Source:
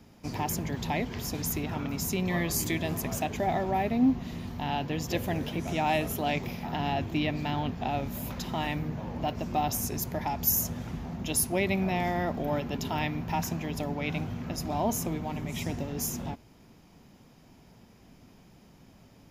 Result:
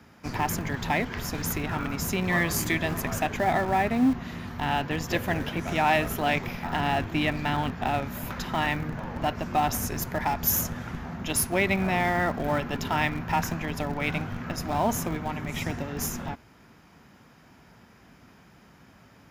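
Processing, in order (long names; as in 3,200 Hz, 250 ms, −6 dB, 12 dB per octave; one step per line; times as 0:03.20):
high-pass filter 42 Hz 24 dB per octave
parametric band 1,500 Hz +11.5 dB 1.2 octaves
in parallel at −9.5 dB: comparator with hysteresis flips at −25.5 dBFS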